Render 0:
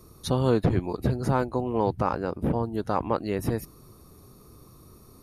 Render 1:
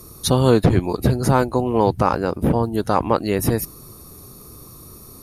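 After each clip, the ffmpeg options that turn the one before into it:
-af "aemphasis=mode=production:type=cd,volume=8dB"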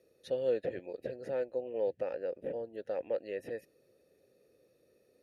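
-filter_complex "[0:a]asplit=3[a][b][c];[a]bandpass=f=530:t=q:w=8,volume=0dB[d];[b]bandpass=f=1.84k:t=q:w=8,volume=-6dB[e];[c]bandpass=f=2.48k:t=q:w=8,volume=-9dB[f];[d][e][f]amix=inputs=3:normalize=0,volume=-7.5dB"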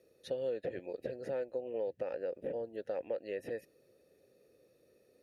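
-af "acompressor=threshold=-34dB:ratio=5,volume=1dB"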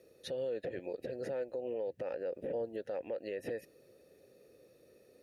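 -af "alimiter=level_in=11dB:limit=-24dB:level=0:latency=1:release=100,volume=-11dB,volume=5dB"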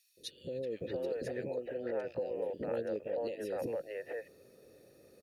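-filter_complex "[0:a]acrossover=split=480|2600[a][b][c];[a]adelay=170[d];[b]adelay=630[e];[d][e][c]amix=inputs=3:normalize=0,volume=4.5dB"

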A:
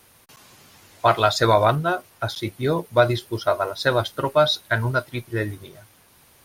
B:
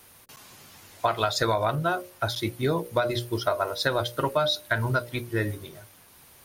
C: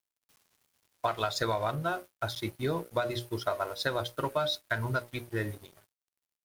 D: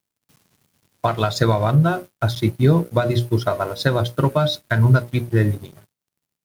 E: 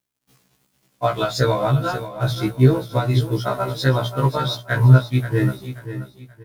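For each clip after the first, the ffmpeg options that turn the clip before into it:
-af "highshelf=f=11k:g=4.5,bandreject=f=60:t=h:w=6,bandreject=f=120:t=h:w=6,bandreject=f=180:t=h:w=6,bandreject=f=240:t=h:w=6,bandreject=f=300:t=h:w=6,bandreject=f=360:t=h:w=6,bandreject=f=420:t=h:w=6,bandreject=f=480:t=h:w=6,bandreject=f=540:t=h:w=6,bandreject=f=600:t=h:w=6,acompressor=threshold=-20dB:ratio=12"
-af "aeval=exprs='sgn(val(0))*max(abs(val(0))-0.00631,0)':c=same,volume=-5dB"
-af "equalizer=f=150:w=0.6:g=14.5,volume=7dB"
-af "aecho=1:1:531|1062|1593:0.251|0.0804|0.0257,afftfilt=real='re*1.73*eq(mod(b,3),0)':imag='im*1.73*eq(mod(b,3),0)':win_size=2048:overlap=0.75,volume=2dB"

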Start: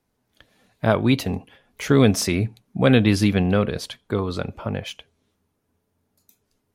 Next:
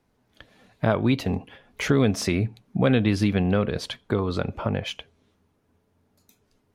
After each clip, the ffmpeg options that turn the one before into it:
-af "highshelf=f=6.7k:g=-11,acompressor=threshold=-29dB:ratio=2,volume=5dB"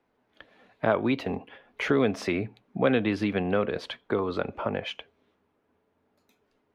-filter_complex "[0:a]acrossover=split=250 3500:gain=0.224 1 0.178[a][b][c];[a][b][c]amix=inputs=3:normalize=0"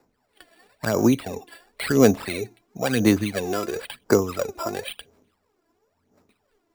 -af "aphaser=in_gain=1:out_gain=1:delay=3:decay=0.72:speed=0.97:type=sinusoidal,acrusher=samples=7:mix=1:aa=0.000001,volume=-1dB"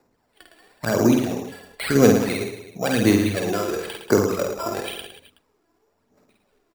-af "aecho=1:1:50|110|182|268.4|372.1:0.631|0.398|0.251|0.158|0.1"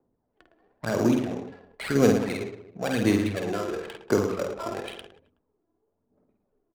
-af "adynamicsmooth=sensitivity=6:basefreq=700,volume=-5dB"

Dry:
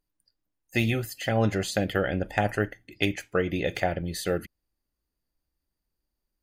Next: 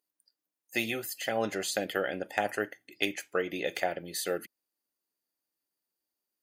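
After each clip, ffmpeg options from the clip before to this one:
-af "highpass=310,highshelf=f=6k:g=7.5,volume=-3.5dB"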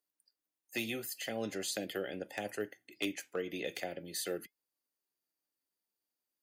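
-filter_complex "[0:a]acrossover=split=160|520|2400[a][b][c][d];[c]acompressor=threshold=-43dB:ratio=6[e];[a][b][e][d]amix=inputs=4:normalize=0,flanger=delay=1.7:depth=2.9:regen=85:speed=0.42:shape=triangular,volume=27.5dB,asoftclip=hard,volume=-27.5dB,volume=1dB"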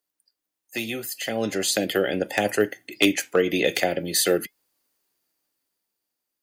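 -af "dynaudnorm=f=290:g=11:m=11dB,volume=6dB"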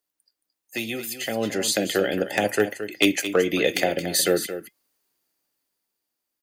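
-af "aecho=1:1:222:0.282"

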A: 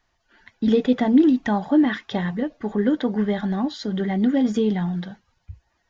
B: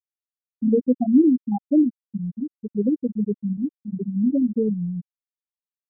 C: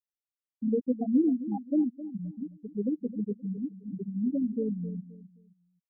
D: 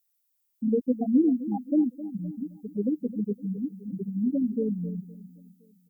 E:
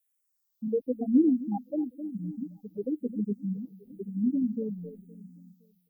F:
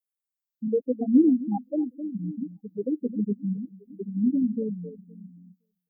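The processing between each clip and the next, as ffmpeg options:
-af "afftfilt=real='re*gte(hypot(re,im),0.631)':imag='im*gte(hypot(re,im),0.631)':win_size=1024:overlap=0.75"
-filter_complex "[0:a]asplit=2[a][b];[b]adelay=262,lowpass=f=800:p=1,volume=-13.5dB,asplit=2[c][d];[d]adelay=262,lowpass=f=800:p=1,volume=0.3,asplit=2[e][f];[f]adelay=262,lowpass=f=800:p=1,volume=0.3[g];[a][c][e][g]amix=inputs=4:normalize=0,volume=-8.5dB"
-filter_complex "[0:a]aemphasis=mode=production:type=75fm,asplit=2[a][b];[b]adelay=514,lowpass=f=2k:p=1,volume=-24dB,asplit=2[c][d];[d]adelay=514,lowpass=f=2k:p=1,volume=0.37[e];[a][c][e]amix=inputs=3:normalize=0,volume=3.5dB"
-filter_complex "[0:a]asplit=2[a][b];[b]afreqshift=-1[c];[a][c]amix=inputs=2:normalize=1"
-af "afftdn=nr=17:nf=-39,volume=3.5dB"

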